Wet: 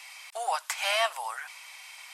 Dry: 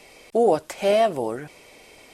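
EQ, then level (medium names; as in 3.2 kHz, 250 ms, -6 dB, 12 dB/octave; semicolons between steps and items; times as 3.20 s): steep high-pass 910 Hz 36 dB/octave; +4.5 dB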